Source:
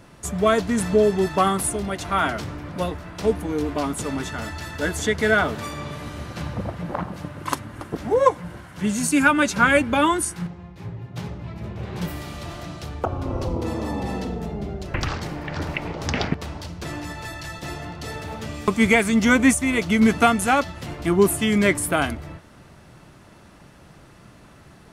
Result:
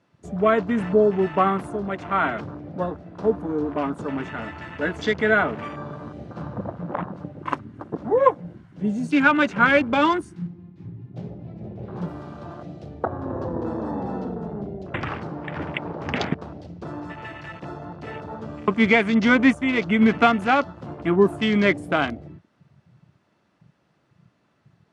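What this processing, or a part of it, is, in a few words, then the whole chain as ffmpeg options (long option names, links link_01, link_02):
over-cleaned archive recording: -af "highpass=130,lowpass=5500,afwtdn=0.02"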